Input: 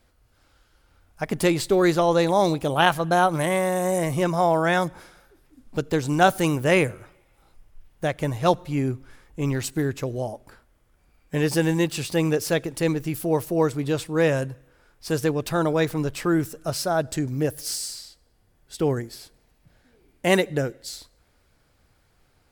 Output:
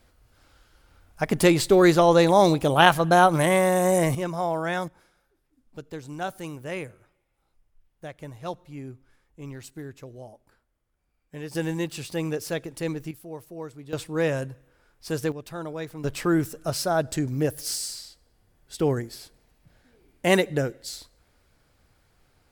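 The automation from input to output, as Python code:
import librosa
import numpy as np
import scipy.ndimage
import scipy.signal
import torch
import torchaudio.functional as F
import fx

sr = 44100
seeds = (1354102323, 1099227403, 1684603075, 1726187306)

y = fx.gain(x, sr, db=fx.steps((0.0, 2.5), (4.15, -6.5), (4.88, -14.0), (11.55, -6.5), (13.11, -16.0), (13.93, -4.0), (15.32, -12.0), (16.04, -0.5)))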